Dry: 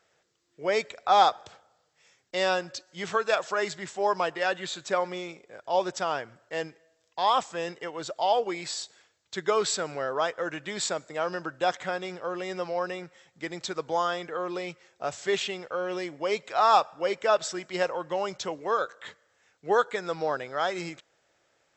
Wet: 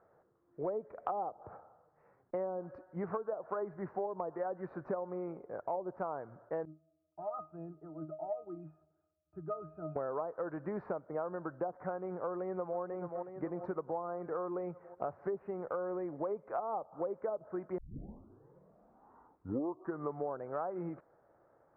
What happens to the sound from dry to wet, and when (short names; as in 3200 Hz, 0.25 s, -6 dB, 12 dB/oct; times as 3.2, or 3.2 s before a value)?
6.65–9.96 octave resonator D#, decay 0.22 s
12.29–12.79 echo throw 0.43 s, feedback 60%, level -12 dB
17.78 tape start 2.65 s
whole clip: treble ducked by the level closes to 550 Hz, closed at -20.5 dBFS; inverse Chebyshev low-pass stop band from 3100 Hz, stop band 50 dB; compressor 6:1, threshold -40 dBFS; gain +5 dB